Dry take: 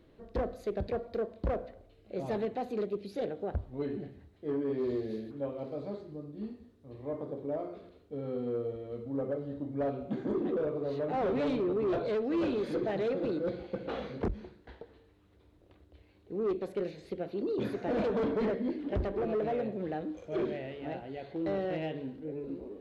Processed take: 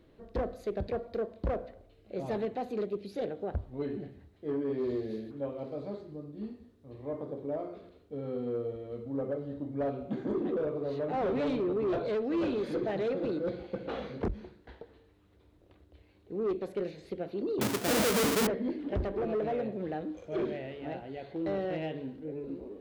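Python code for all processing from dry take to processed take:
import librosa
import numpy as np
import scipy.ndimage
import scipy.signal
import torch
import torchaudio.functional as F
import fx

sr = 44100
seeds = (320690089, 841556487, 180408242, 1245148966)

y = fx.chain(x, sr, fx.halfwave_hold(),
    fx.highpass(hz=60.0, slope=12),
    fx.high_shelf(hz=4400.0, db=7.5), at=(17.61, 18.47))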